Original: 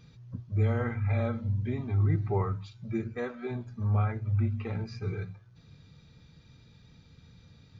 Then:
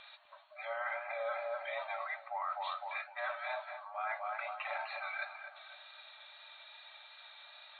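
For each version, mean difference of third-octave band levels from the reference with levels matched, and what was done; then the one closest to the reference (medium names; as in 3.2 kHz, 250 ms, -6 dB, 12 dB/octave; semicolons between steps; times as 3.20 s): 16.5 dB: FFT band-pass 570–4400 Hz; filtered feedback delay 254 ms, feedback 51%, low-pass 1.8 kHz, level -9.5 dB; wow and flutter 20 cents; reverse; compression 10:1, threshold -48 dBFS, peak gain reduction 16.5 dB; reverse; trim +12.5 dB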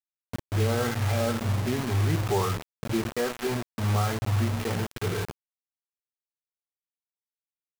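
11.0 dB: bass shelf 260 Hz -10 dB; in parallel at +3 dB: peak limiter -32 dBFS, peak gain reduction 11 dB; on the sum: Gaussian low-pass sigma 4.2 samples; bit crusher 6-bit; trim +4 dB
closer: second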